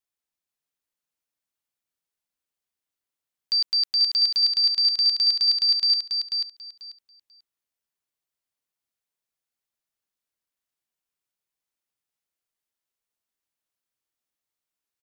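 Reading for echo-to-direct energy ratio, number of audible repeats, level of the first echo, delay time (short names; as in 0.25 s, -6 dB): -4.5 dB, 3, -4.5 dB, 0.49 s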